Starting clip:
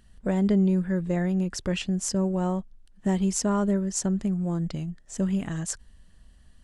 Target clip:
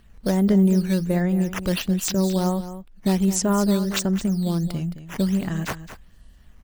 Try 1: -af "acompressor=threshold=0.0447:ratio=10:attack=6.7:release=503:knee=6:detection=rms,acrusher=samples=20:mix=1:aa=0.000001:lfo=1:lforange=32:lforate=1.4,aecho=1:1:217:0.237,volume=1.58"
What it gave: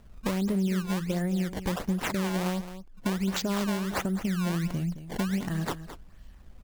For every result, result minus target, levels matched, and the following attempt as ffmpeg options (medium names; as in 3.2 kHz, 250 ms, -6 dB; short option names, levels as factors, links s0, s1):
compression: peak gain reduction +11 dB; decimation with a swept rate: distortion +8 dB
-af "acrusher=samples=20:mix=1:aa=0.000001:lfo=1:lforange=32:lforate=1.4,aecho=1:1:217:0.237,volume=1.58"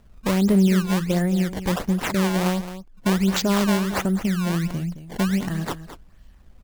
decimation with a swept rate: distortion +7 dB
-af "acrusher=samples=6:mix=1:aa=0.000001:lfo=1:lforange=9.6:lforate=1.4,aecho=1:1:217:0.237,volume=1.58"